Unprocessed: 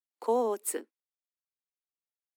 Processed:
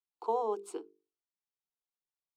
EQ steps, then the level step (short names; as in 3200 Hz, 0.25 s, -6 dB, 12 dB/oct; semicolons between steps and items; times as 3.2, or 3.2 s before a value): LPF 3700 Hz 12 dB/oct; notches 50/100/150/200/250/300/350/400/450 Hz; fixed phaser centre 370 Hz, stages 8; 0.0 dB